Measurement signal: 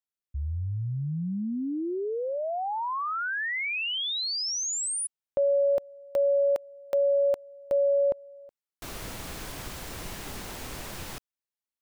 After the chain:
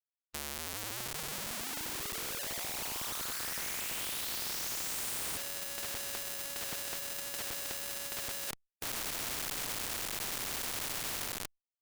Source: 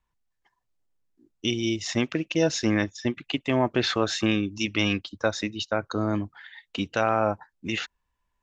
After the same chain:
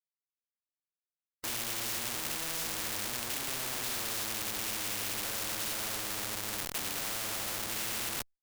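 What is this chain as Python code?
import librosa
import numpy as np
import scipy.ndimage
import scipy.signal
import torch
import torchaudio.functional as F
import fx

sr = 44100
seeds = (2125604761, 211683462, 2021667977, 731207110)

y = fx.rev_gated(x, sr, seeds[0], gate_ms=450, shape='falling', drr_db=-7.0)
y = fx.schmitt(y, sr, flips_db=-35.5)
y = fx.spectral_comp(y, sr, ratio=4.0)
y = F.gain(torch.from_numpy(y), -2.0).numpy()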